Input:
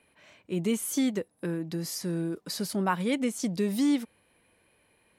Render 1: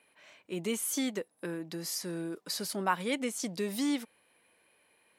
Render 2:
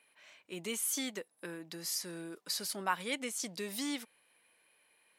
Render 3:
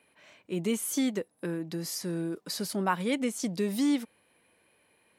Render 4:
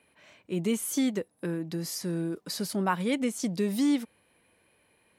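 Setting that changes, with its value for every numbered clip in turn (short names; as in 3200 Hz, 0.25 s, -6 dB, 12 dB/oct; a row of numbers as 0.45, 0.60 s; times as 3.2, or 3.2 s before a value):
HPF, cutoff: 500, 1400, 180, 61 Hz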